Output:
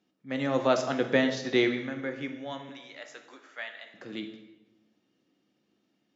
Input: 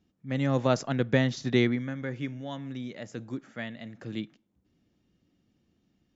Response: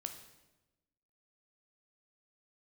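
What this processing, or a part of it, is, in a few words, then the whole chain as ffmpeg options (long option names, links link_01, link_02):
supermarket ceiling speaker: -filter_complex "[0:a]asettb=1/sr,asplit=3[link_01][link_02][link_03];[link_01]atrim=end=2.694[link_04];[link_02]atrim=start=2.69:end=3.94,asetpts=PTS-STARTPTS,afade=type=in:duration=0.004:curve=qsin,afade=type=out:start_time=1.246:duration=0.004:curve=qsin,highpass=820[link_05];[link_03]atrim=start=3.936[link_06];[link_04][link_05]acrossfade=duration=0.004:curve1=hsin:curve2=qsin[link_07];[link_07][link_06]acrossfade=duration=0.004:curve1=qsin:curve2=hsin,highpass=310,lowpass=6500[link_08];[1:a]atrim=start_sample=2205[link_09];[link_08][link_09]afir=irnorm=-1:irlink=0,volume=5dB"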